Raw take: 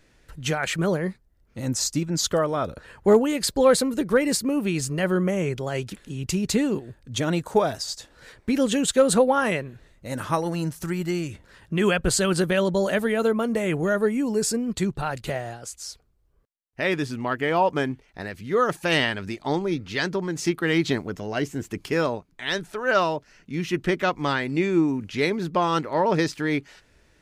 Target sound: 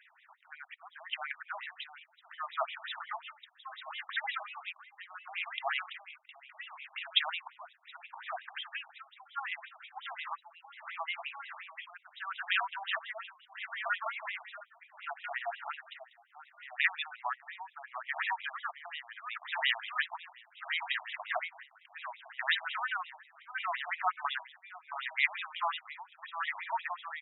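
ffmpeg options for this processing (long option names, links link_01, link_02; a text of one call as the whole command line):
ffmpeg -i in.wav -filter_complex "[0:a]acrossover=split=140|3000[link_01][link_02][link_03];[link_02]acompressor=threshold=-33dB:ratio=2[link_04];[link_01][link_04][link_03]amix=inputs=3:normalize=0,aecho=1:1:670|1340|2010|2680|3350|4020:0.562|0.27|0.13|0.0622|0.0299|0.0143,tremolo=f=0.71:d=0.9,asplit=3[link_05][link_06][link_07];[link_05]afade=type=out:start_time=8.89:duration=0.02[link_08];[link_06]acompressor=threshold=-34dB:ratio=5,afade=type=in:start_time=8.89:duration=0.02,afade=type=out:start_time=11.07:duration=0.02[link_09];[link_07]afade=type=in:start_time=11.07:duration=0.02[link_10];[link_08][link_09][link_10]amix=inputs=3:normalize=0,afftfilt=real='re*between(b*sr/1024,870*pow(2800/870,0.5+0.5*sin(2*PI*5.6*pts/sr))/1.41,870*pow(2800/870,0.5+0.5*sin(2*PI*5.6*pts/sr))*1.41)':imag='im*between(b*sr/1024,870*pow(2800/870,0.5+0.5*sin(2*PI*5.6*pts/sr))/1.41,870*pow(2800/870,0.5+0.5*sin(2*PI*5.6*pts/sr))*1.41)':win_size=1024:overlap=0.75,volume=7dB" out.wav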